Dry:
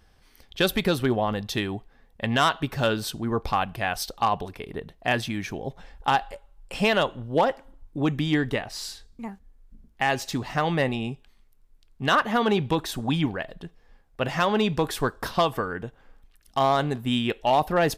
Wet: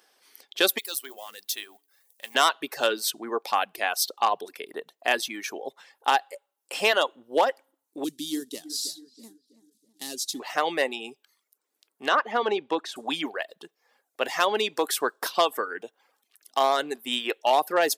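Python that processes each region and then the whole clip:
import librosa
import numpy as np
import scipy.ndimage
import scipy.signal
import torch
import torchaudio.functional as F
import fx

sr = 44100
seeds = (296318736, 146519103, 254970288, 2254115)

y = fx.chain(x, sr, fx.law_mismatch(coded='mu'),
    fx.pre_emphasis(coefficient=0.9),
    fx.hum_notches(base_hz=60, count=7), at=(0.78, 2.35))
y = fx.chain(y, sr, fx.cvsd(bps=64000),
    fx.curve_eq(hz=(290.0, 820.0, 2400.0, 3800.0), db=(0, -25, -19, 0)),
    fx.echo_filtered(ms=325, feedback_pct=48, hz=1700.0, wet_db=-13), at=(8.04, 10.4))
y = fx.chain(y, sr, fx.lowpass(hz=6000.0, slope=12),
    fx.high_shelf(hz=2400.0, db=-8.5), at=(12.08, 12.96))
y = scipy.signal.sosfilt(scipy.signal.butter(4, 330.0, 'highpass', fs=sr, output='sos'), y)
y = fx.dereverb_blind(y, sr, rt60_s=0.54)
y = fx.high_shelf(y, sr, hz=4700.0, db=9.5)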